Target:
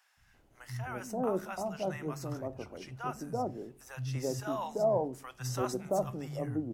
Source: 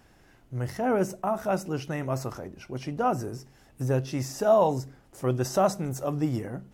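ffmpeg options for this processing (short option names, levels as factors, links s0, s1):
-filter_complex "[0:a]acrossover=split=170|880[s0][s1][s2];[s0]adelay=170[s3];[s1]adelay=340[s4];[s3][s4][s2]amix=inputs=3:normalize=0,volume=0.531"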